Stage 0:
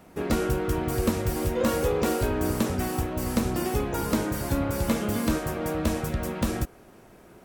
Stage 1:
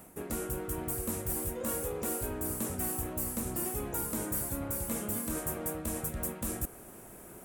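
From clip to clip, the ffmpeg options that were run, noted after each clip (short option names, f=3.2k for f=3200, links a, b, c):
-af "areverse,acompressor=threshold=-36dB:ratio=4,areverse,highshelf=f=6.7k:t=q:w=1.5:g=12.5"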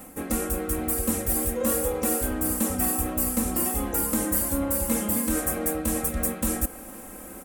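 -af "aecho=1:1:3.8:0.99,volume=6dB"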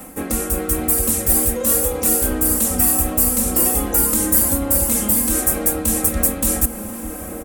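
-filter_complex "[0:a]acrossover=split=110|3300[a][b][c];[b]alimiter=limit=-23.5dB:level=0:latency=1:release=203[d];[c]dynaudnorm=f=360:g=3:m=3.5dB[e];[a][d][e]amix=inputs=3:normalize=0,asplit=2[f][g];[g]adelay=1749,volume=-7dB,highshelf=f=4k:g=-39.4[h];[f][h]amix=inputs=2:normalize=0,volume=7dB"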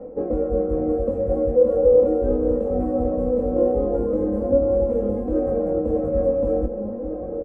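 -filter_complex "[0:a]lowpass=f=520:t=q:w=4.9,asplit=2[a][b];[b]adelay=20,volume=-5dB[c];[a][c]amix=inputs=2:normalize=0,flanger=delay=2.1:depth=5.3:regen=68:speed=0.4:shape=sinusoidal"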